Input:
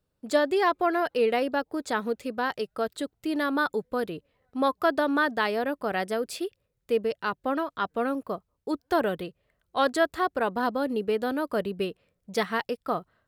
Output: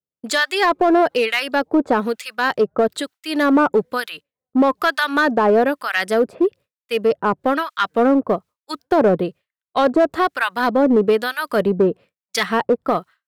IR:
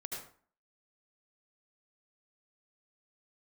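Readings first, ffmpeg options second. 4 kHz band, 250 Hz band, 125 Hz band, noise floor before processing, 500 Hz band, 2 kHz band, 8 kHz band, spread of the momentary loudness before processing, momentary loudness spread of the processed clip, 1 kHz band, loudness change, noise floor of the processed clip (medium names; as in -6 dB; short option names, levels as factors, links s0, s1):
+10.0 dB, +10.5 dB, +11.5 dB, -78 dBFS, +9.0 dB, +9.0 dB, no reading, 9 LU, 9 LU, +8.0 dB, +9.5 dB, under -85 dBFS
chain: -filter_complex "[0:a]highpass=120,acrossover=split=1200[s0][s1];[s0]aeval=exprs='val(0)*(1-1/2+1/2*cos(2*PI*1.1*n/s))':c=same[s2];[s1]aeval=exprs='val(0)*(1-1/2-1/2*cos(2*PI*1.1*n/s))':c=same[s3];[s2][s3]amix=inputs=2:normalize=0,highshelf=f=9600:g=-4.5,agate=range=0.0224:threshold=0.00398:ratio=3:detection=peak,asplit=2[s4][s5];[s5]asoftclip=type=hard:threshold=0.0355,volume=0.708[s6];[s4][s6]amix=inputs=2:normalize=0,alimiter=level_in=8.41:limit=0.891:release=50:level=0:latency=1,volume=0.473"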